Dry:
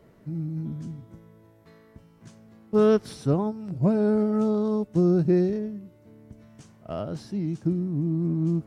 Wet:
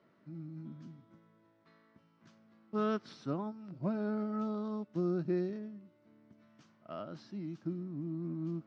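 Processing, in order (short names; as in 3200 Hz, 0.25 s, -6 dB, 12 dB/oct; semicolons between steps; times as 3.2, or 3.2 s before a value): speaker cabinet 220–5200 Hz, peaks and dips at 450 Hz -9 dB, 770 Hz -4 dB, 1300 Hz +5 dB; gain -8.5 dB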